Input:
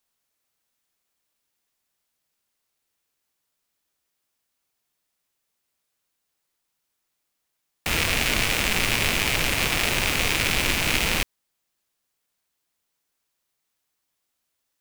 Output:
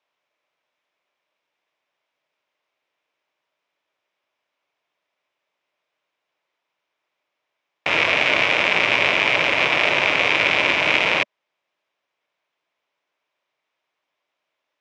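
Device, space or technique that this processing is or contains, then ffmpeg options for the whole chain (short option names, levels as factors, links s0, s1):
kitchen radio: -af "highpass=210,equalizer=f=220:t=q:w=4:g=-9,equalizer=f=600:t=q:w=4:g=8,equalizer=f=1000:t=q:w=4:g=5,equalizer=f=2300:t=q:w=4:g=5,equalizer=f=4400:t=q:w=4:g=-8,lowpass=f=4500:w=0.5412,lowpass=f=4500:w=1.3066,volume=1.58"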